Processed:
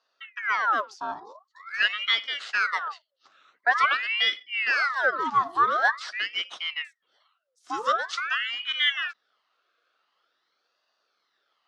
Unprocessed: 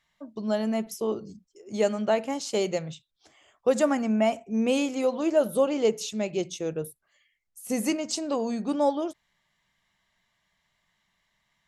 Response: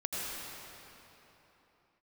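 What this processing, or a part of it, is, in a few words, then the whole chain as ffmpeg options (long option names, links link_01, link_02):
voice changer toy: -af "aeval=exprs='val(0)*sin(2*PI*1600*n/s+1600*0.7/0.46*sin(2*PI*0.46*n/s))':channel_layout=same,highpass=510,equalizer=frequency=880:width_type=q:width=4:gain=-6,equalizer=frequency=1300:width_type=q:width=4:gain=8,equalizer=frequency=2400:width_type=q:width=4:gain=-8,lowpass=frequency=4900:width=0.5412,lowpass=frequency=4900:width=1.3066,volume=4dB"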